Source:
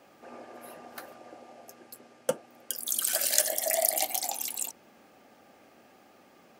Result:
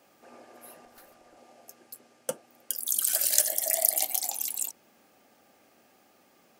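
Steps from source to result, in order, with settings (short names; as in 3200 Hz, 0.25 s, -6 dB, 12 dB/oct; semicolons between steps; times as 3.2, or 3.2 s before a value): high shelf 4800 Hz +9.5 dB; 0.85–1.37 tube stage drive 43 dB, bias 0.5; gain -5.5 dB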